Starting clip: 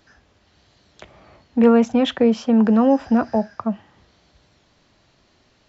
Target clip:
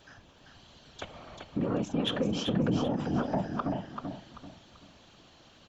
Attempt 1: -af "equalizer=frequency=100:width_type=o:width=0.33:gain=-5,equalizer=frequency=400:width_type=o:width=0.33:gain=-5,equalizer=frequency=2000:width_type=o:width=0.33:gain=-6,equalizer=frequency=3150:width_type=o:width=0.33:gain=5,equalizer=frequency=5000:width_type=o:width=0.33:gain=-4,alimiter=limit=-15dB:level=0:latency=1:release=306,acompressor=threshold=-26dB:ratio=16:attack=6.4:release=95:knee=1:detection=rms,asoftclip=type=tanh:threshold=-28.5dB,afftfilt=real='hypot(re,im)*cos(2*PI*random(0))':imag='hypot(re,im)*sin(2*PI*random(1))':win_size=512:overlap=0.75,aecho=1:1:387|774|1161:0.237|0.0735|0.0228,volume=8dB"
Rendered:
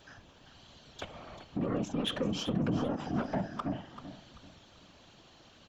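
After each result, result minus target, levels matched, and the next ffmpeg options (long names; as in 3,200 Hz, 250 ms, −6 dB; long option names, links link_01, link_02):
soft clipping: distortion +10 dB; echo-to-direct −6.5 dB
-af "equalizer=frequency=100:width_type=o:width=0.33:gain=-5,equalizer=frequency=400:width_type=o:width=0.33:gain=-5,equalizer=frequency=2000:width_type=o:width=0.33:gain=-6,equalizer=frequency=3150:width_type=o:width=0.33:gain=5,equalizer=frequency=5000:width_type=o:width=0.33:gain=-4,alimiter=limit=-15dB:level=0:latency=1:release=306,acompressor=threshold=-26dB:ratio=16:attack=6.4:release=95:knee=1:detection=rms,asoftclip=type=tanh:threshold=-21dB,afftfilt=real='hypot(re,im)*cos(2*PI*random(0))':imag='hypot(re,im)*sin(2*PI*random(1))':win_size=512:overlap=0.75,aecho=1:1:387|774|1161:0.237|0.0735|0.0228,volume=8dB"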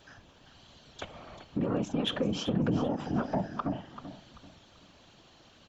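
echo-to-direct −6.5 dB
-af "equalizer=frequency=100:width_type=o:width=0.33:gain=-5,equalizer=frequency=400:width_type=o:width=0.33:gain=-5,equalizer=frequency=2000:width_type=o:width=0.33:gain=-6,equalizer=frequency=3150:width_type=o:width=0.33:gain=5,equalizer=frequency=5000:width_type=o:width=0.33:gain=-4,alimiter=limit=-15dB:level=0:latency=1:release=306,acompressor=threshold=-26dB:ratio=16:attack=6.4:release=95:knee=1:detection=rms,asoftclip=type=tanh:threshold=-21dB,afftfilt=real='hypot(re,im)*cos(2*PI*random(0))':imag='hypot(re,im)*sin(2*PI*random(1))':win_size=512:overlap=0.75,aecho=1:1:387|774|1161|1548:0.501|0.155|0.0482|0.0149,volume=8dB"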